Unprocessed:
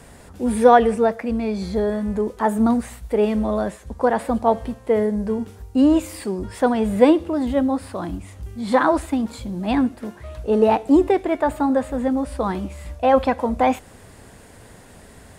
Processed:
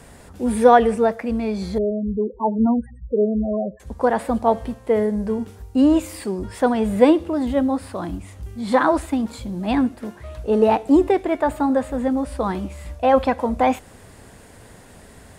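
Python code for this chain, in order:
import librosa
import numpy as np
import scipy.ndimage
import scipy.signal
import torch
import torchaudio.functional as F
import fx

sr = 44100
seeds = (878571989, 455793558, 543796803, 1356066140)

y = fx.spec_topn(x, sr, count=8, at=(1.78, 3.8))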